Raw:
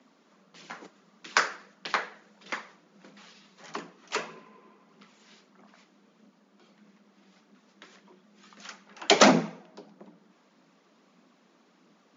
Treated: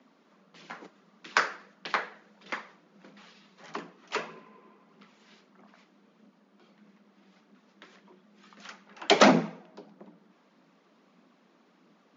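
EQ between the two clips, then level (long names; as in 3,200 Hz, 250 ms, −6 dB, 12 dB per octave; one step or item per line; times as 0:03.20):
high-frequency loss of the air 96 metres
0.0 dB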